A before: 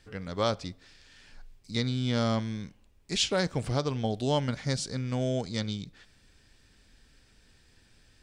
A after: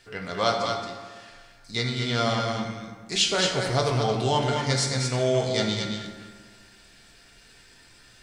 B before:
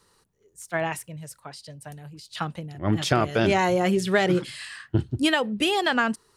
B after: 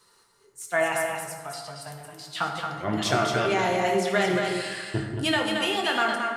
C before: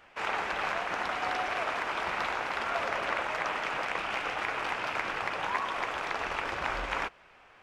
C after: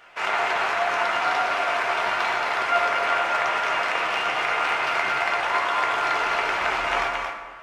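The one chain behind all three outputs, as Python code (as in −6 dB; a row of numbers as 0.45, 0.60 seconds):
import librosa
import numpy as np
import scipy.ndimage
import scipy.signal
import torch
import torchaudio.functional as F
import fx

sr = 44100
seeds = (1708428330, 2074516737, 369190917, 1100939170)

p1 = fx.low_shelf(x, sr, hz=250.0, db=-12.0)
p2 = fx.rider(p1, sr, range_db=3, speed_s=0.5)
p3 = fx.comb_fb(p2, sr, f0_hz=700.0, decay_s=0.22, harmonics='all', damping=0.0, mix_pct=70)
p4 = p3 + fx.echo_single(p3, sr, ms=224, db=-5.0, dry=0)
p5 = fx.rev_fdn(p4, sr, rt60_s=1.6, lf_ratio=1.0, hf_ratio=0.55, size_ms=46.0, drr_db=1.0)
y = p5 * 10.0 ** (-9 / 20.0) / np.max(np.abs(p5))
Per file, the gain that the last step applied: +14.5, +8.0, +15.0 decibels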